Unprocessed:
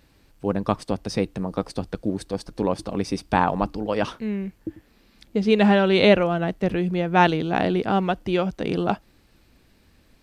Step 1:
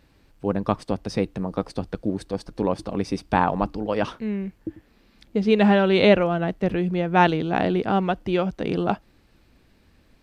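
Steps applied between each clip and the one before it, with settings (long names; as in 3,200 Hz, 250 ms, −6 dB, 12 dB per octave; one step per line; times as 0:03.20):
high-shelf EQ 4,900 Hz −6.5 dB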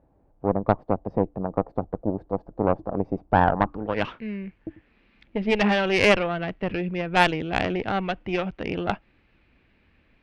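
low-pass filter sweep 730 Hz → 2,500 Hz, 0:03.50–0:04.02
harmonic generator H 2 −7 dB, 6 −23 dB, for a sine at −2 dBFS
level −4.5 dB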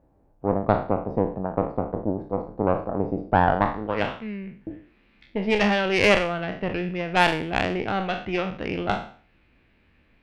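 peak hold with a decay on every bin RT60 0.45 s
level −1 dB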